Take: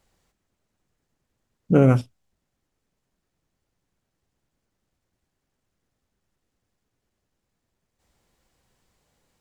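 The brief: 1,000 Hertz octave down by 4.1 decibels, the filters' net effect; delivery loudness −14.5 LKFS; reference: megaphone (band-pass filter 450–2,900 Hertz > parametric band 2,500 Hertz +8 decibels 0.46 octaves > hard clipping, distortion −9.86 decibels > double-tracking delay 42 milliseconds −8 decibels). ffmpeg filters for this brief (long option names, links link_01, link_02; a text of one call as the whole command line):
ffmpeg -i in.wav -filter_complex "[0:a]highpass=450,lowpass=2900,equalizer=frequency=1000:width_type=o:gain=-6.5,equalizer=frequency=2500:width_type=o:width=0.46:gain=8,asoftclip=type=hard:threshold=-20.5dB,asplit=2[link_01][link_02];[link_02]adelay=42,volume=-8dB[link_03];[link_01][link_03]amix=inputs=2:normalize=0,volume=15dB" out.wav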